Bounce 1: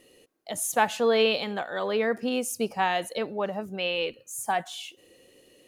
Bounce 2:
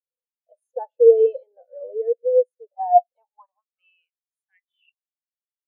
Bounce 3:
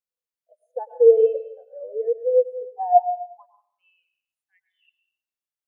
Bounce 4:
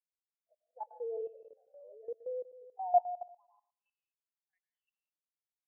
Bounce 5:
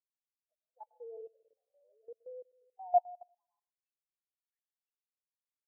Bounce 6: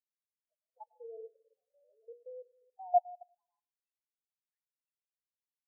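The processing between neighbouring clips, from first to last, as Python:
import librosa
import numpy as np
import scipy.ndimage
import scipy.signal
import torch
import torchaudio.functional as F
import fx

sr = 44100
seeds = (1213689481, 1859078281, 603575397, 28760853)

y1 = fx.filter_sweep_highpass(x, sr, from_hz=510.0, to_hz=2700.0, start_s=2.52, end_s=4.87, q=7.6)
y1 = fx.spectral_expand(y1, sr, expansion=2.5)
y2 = fx.rev_plate(y1, sr, seeds[0], rt60_s=0.62, hf_ratio=1.0, predelay_ms=95, drr_db=10.0)
y2 = y2 * 10.0 ** (-1.0 / 20.0)
y3 = fx.bandpass_q(y2, sr, hz=840.0, q=2.5)
y3 = fx.level_steps(y3, sr, step_db=16)
y3 = y3 * 10.0 ** (-5.0 / 20.0)
y4 = fx.upward_expand(y3, sr, threshold_db=-58.0, expansion=1.5)
y5 = fx.spec_topn(y4, sr, count=8)
y5 = fx.hum_notches(y5, sr, base_hz=60, count=8)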